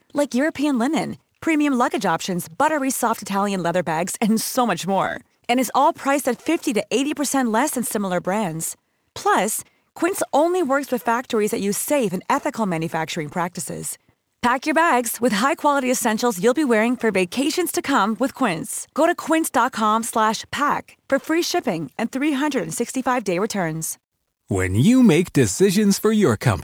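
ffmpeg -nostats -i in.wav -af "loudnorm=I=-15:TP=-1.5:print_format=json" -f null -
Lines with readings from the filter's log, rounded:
"input_i" : "-20.4",
"input_tp" : "-2.2",
"input_lra" : "3.8",
"input_thresh" : "-30.5",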